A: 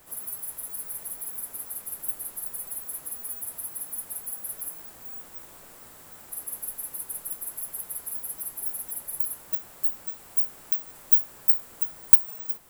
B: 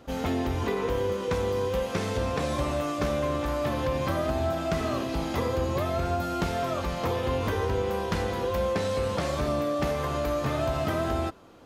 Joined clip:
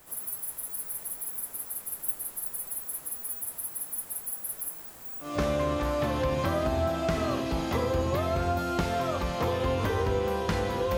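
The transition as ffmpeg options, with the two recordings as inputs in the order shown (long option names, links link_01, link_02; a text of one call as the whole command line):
ffmpeg -i cue0.wav -i cue1.wav -filter_complex "[0:a]apad=whole_dur=10.97,atrim=end=10.97,atrim=end=5.39,asetpts=PTS-STARTPTS[link_01];[1:a]atrim=start=2.82:end=8.6,asetpts=PTS-STARTPTS[link_02];[link_01][link_02]acrossfade=duration=0.2:curve1=tri:curve2=tri" out.wav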